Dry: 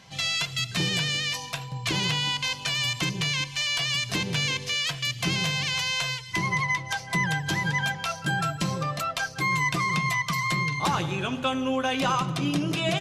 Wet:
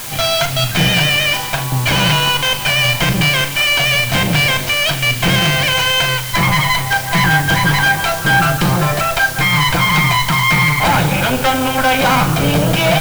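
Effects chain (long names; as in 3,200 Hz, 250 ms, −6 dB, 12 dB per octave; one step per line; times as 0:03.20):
lower of the sound and its delayed copy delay 1.3 ms
bass and treble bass −1 dB, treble −13 dB
in parallel at −8 dB: sine wavefolder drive 10 dB, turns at −15 dBFS
on the sum: bit-depth reduction 6 bits, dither triangular
flutter between parallel walls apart 6.7 metres, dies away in 0.22 s
level +8.5 dB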